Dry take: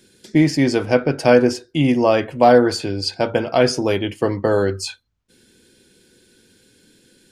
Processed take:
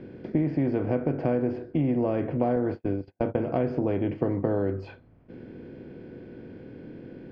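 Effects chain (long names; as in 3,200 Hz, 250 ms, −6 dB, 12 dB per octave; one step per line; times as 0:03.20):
compressor on every frequency bin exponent 0.6
0:02.56–0:03.49: noise gate −16 dBFS, range −45 dB
low-pass filter 2,200 Hz 24 dB per octave
parametric band 1,500 Hz −14 dB 3 octaves
downward compressor 4 to 1, threshold −20 dBFS, peak gain reduction 8.5 dB
level −2 dB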